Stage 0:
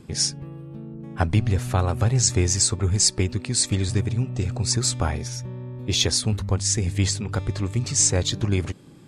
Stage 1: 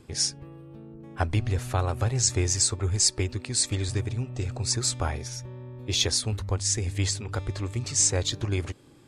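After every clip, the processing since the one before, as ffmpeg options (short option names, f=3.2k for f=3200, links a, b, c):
-af "equalizer=f=180:w=2.4:g=-13,volume=-3dB"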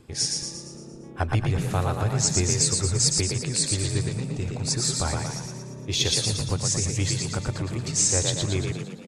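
-filter_complex "[0:a]asplit=8[a][b][c][d][e][f][g][h];[b]adelay=115,afreqshift=33,volume=-3.5dB[i];[c]adelay=230,afreqshift=66,volume=-9dB[j];[d]adelay=345,afreqshift=99,volume=-14.5dB[k];[e]adelay=460,afreqshift=132,volume=-20dB[l];[f]adelay=575,afreqshift=165,volume=-25.6dB[m];[g]adelay=690,afreqshift=198,volume=-31.1dB[n];[h]adelay=805,afreqshift=231,volume=-36.6dB[o];[a][i][j][k][l][m][n][o]amix=inputs=8:normalize=0"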